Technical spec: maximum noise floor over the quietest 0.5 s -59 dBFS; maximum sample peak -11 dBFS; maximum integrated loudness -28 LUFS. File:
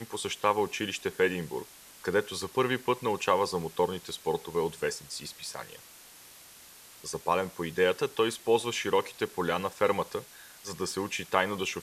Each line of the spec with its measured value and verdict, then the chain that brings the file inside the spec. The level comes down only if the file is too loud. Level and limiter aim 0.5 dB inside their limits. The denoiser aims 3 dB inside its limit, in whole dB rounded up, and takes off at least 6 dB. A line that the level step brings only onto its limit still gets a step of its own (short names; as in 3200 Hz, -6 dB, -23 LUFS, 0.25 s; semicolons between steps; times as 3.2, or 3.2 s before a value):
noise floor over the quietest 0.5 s -52 dBFS: fail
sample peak -7.0 dBFS: fail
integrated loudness -30.5 LUFS: OK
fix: denoiser 10 dB, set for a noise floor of -52 dBFS; limiter -11.5 dBFS